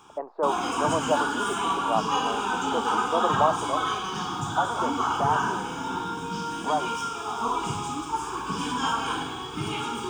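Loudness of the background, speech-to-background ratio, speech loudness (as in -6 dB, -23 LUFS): -28.0 LUFS, -2.0 dB, -30.0 LUFS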